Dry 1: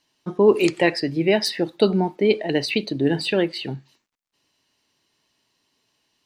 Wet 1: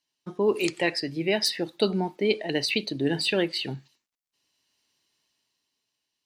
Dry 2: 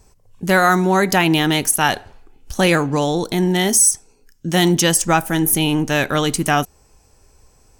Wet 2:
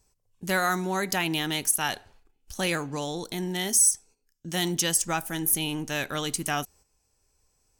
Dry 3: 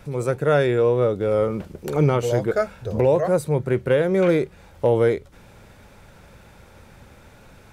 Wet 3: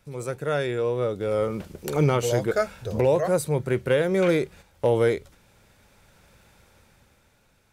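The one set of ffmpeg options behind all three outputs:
ffmpeg -i in.wav -af "agate=range=-9dB:threshold=-42dB:ratio=16:detection=peak,highshelf=frequency=2300:gain=8,dynaudnorm=framelen=190:gausssize=13:maxgain=13.5dB,volume=-8.5dB" out.wav

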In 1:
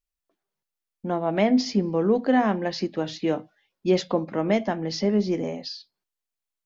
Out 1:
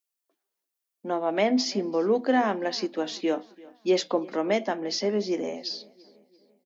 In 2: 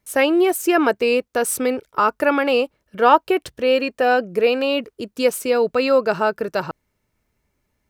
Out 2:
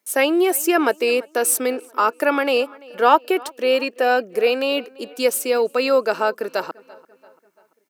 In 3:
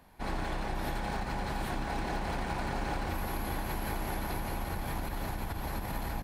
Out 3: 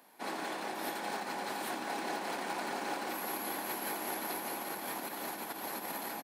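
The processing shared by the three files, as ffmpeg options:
ffmpeg -i in.wav -filter_complex "[0:a]highpass=frequency=250:width=0.5412,highpass=frequency=250:width=1.3066,highshelf=frequency=5700:gain=8,asplit=2[link_01][link_02];[link_02]adelay=340,lowpass=frequency=4000:poles=1,volume=-22.5dB,asplit=2[link_03][link_04];[link_04]adelay=340,lowpass=frequency=4000:poles=1,volume=0.52,asplit=2[link_05][link_06];[link_06]adelay=340,lowpass=frequency=4000:poles=1,volume=0.52,asplit=2[link_07][link_08];[link_08]adelay=340,lowpass=frequency=4000:poles=1,volume=0.52[link_09];[link_01][link_03][link_05][link_07][link_09]amix=inputs=5:normalize=0,volume=-1dB" out.wav

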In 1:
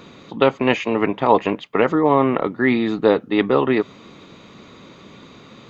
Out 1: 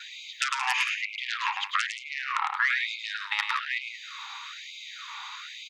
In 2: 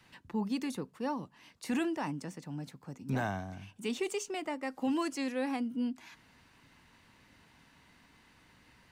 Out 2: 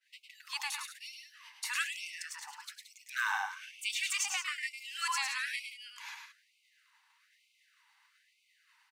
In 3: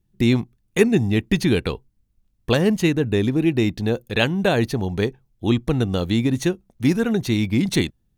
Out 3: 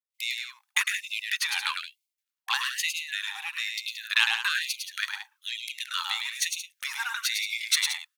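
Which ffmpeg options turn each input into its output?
ffmpeg -i in.wav -filter_complex "[0:a]aeval=exprs='0.891*(cos(1*acos(clip(val(0)/0.891,-1,1)))-cos(1*PI/2))+0.158*(cos(4*acos(clip(val(0)/0.891,-1,1)))-cos(4*PI/2))+0.0251*(cos(5*acos(clip(val(0)/0.891,-1,1)))-cos(5*PI/2))+0.178*(cos(6*acos(clip(val(0)/0.891,-1,1)))-cos(6*PI/2))+0.0224*(cos(8*acos(clip(val(0)/0.891,-1,1)))-cos(8*PI/2))':channel_layout=same,acompressor=threshold=-22dB:ratio=6,agate=range=-33dB:threshold=-51dB:ratio=3:detection=peak,asplit=2[link_01][link_02];[link_02]aecho=0:1:105|174.9:0.562|0.282[link_03];[link_01][link_03]amix=inputs=2:normalize=0,afftfilt=real='re*gte(b*sr/1024,750*pow(2100/750,0.5+0.5*sin(2*PI*1.1*pts/sr)))':imag='im*gte(b*sr/1024,750*pow(2100/750,0.5+0.5*sin(2*PI*1.1*pts/sr)))':win_size=1024:overlap=0.75,volume=6.5dB" out.wav

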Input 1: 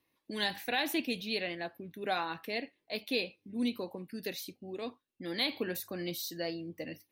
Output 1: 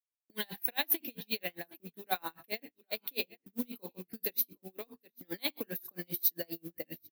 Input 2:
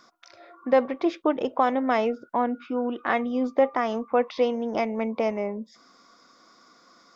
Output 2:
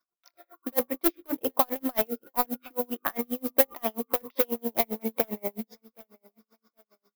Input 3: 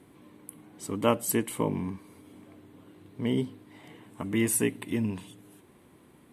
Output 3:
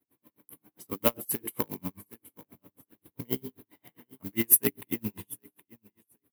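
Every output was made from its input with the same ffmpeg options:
ffmpeg -i in.wav -filter_complex "[0:a]asplit=2[link_01][link_02];[link_02]aeval=exprs='(mod(6.31*val(0)+1,2)-1)/6.31':channel_layout=same,volume=-7.5dB[link_03];[link_01][link_03]amix=inputs=2:normalize=0,agate=range=-33dB:threshold=-43dB:ratio=3:detection=peak,acrossover=split=200|3000[link_04][link_05][link_06];[link_04]acompressor=threshold=-30dB:ratio=6[link_07];[link_07][link_05][link_06]amix=inputs=3:normalize=0,acrusher=bits=5:mode=log:mix=0:aa=0.000001,bandreject=frequency=50:width_type=h:width=6,bandreject=frequency=100:width_type=h:width=6,bandreject=frequency=150:width_type=h:width=6,bandreject=frequency=200:width_type=h:width=6,bandreject=frequency=250:width_type=h:width=6,bandreject=frequency=300:width_type=h:width=6,bandreject=frequency=350:width_type=h:width=6,bandreject=frequency=400:width_type=h:width=6,bandreject=frequency=450:width_type=h:width=6,aexciter=amount=9.7:drive=4.6:freq=11000,asplit=2[link_08][link_09];[link_09]aecho=0:1:769|1538:0.0668|0.016[link_10];[link_08][link_10]amix=inputs=2:normalize=0,aeval=exprs='val(0)*pow(10,-37*(0.5-0.5*cos(2*PI*7.5*n/s))/20)':channel_layout=same,volume=-1dB" out.wav

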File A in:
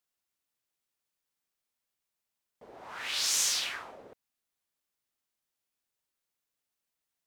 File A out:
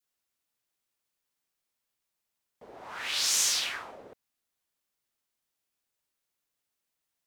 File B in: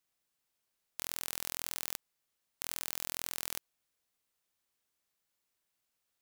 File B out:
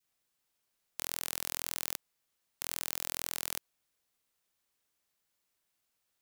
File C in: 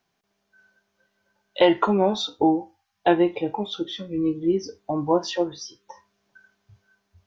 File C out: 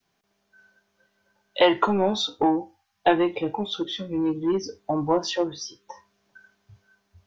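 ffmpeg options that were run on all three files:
ffmpeg -i in.wav -filter_complex "[0:a]adynamicequalizer=threshold=0.0251:dfrequency=830:dqfactor=0.76:tfrequency=830:tqfactor=0.76:attack=5:release=100:ratio=0.375:range=2.5:mode=cutabove:tftype=bell,acrossover=split=540[link_01][link_02];[link_01]asoftclip=type=tanh:threshold=-22.5dB[link_03];[link_03][link_02]amix=inputs=2:normalize=0,volume=2dB" out.wav

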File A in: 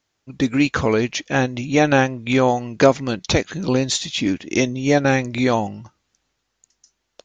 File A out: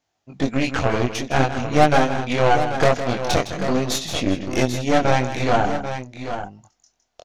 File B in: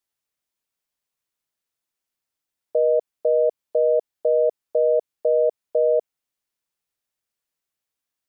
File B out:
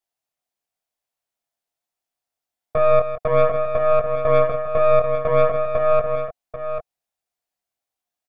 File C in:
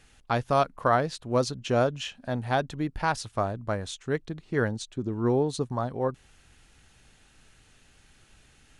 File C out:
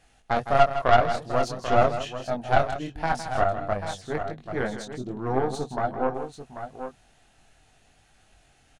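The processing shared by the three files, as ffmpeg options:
ffmpeg -i in.wav -filter_complex "[0:a]equalizer=frequency=710:width_type=o:width=0.43:gain=12.5,acontrast=55,flanger=delay=19.5:depth=4.8:speed=0.5,aeval=exprs='1*(cos(1*acos(clip(val(0)/1,-1,1)))-cos(1*PI/2))+0.282*(cos(2*acos(clip(val(0)/1,-1,1)))-cos(2*PI/2))+0.126*(cos(6*acos(clip(val(0)/1,-1,1)))-cos(6*PI/2))':channel_layout=same,asplit=2[link_01][link_02];[link_02]aecho=0:1:160|789:0.282|0.335[link_03];[link_01][link_03]amix=inputs=2:normalize=0,volume=-6.5dB" out.wav

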